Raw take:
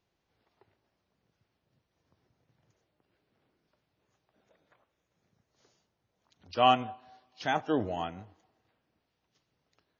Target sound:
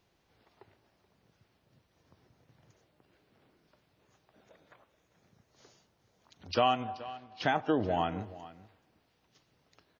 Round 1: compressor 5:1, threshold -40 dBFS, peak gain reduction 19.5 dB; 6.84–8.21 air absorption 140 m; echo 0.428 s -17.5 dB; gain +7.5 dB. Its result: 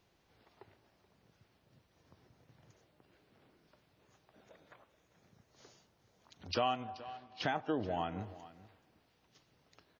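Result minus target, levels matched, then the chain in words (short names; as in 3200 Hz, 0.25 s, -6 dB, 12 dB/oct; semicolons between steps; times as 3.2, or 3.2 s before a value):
compressor: peak gain reduction +6.5 dB
compressor 5:1, threshold -32 dBFS, peak gain reduction 13 dB; 6.84–8.21 air absorption 140 m; echo 0.428 s -17.5 dB; gain +7.5 dB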